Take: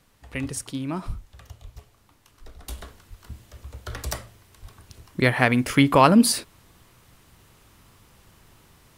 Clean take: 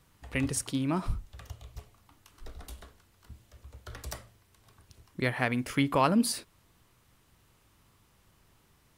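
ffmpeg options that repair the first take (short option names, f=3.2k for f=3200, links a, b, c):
-filter_complex "[0:a]asplit=3[a][b][c];[a]afade=t=out:st=1.63:d=0.02[d];[b]highpass=f=140:w=0.5412,highpass=f=140:w=1.3066,afade=t=in:st=1.63:d=0.02,afade=t=out:st=1.75:d=0.02[e];[c]afade=t=in:st=1.75:d=0.02[f];[d][e][f]amix=inputs=3:normalize=0,asplit=3[g][h][i];[g]afade=t=out:st=3.09:d=0.02[j];[h]highpass=f=140:w=0.5412,highpass=f=140:w=1.3066,afade=t=in:st=3.09:d=0.02,afade=t=out:st=3.21:d=0.02[k];[i]afade=t=in:st=3.21:d=0.02[l];[j][k][l]amix=inputs=3:normalize=0,asplit=3[m][n][o];[m]afade=t=out:st=4.61:d=0.02[p];[n]highpass=f=140:w=0.5412,highpass=f=140:w=1.3066,afade=t=in:st=4.61:d=0.02,afade=t=out:st=4.73:d=0.02[q];[o]afade=t=in:st=4.73:d=0.02[r];[p][q][r]amix=inputs=3:normalize=0,agate=range=-21dB:threshold=-49dB,asetnsamples=n=441:p=0,asendcmd='2.68 volume volume -9.5dB',volume=0dB"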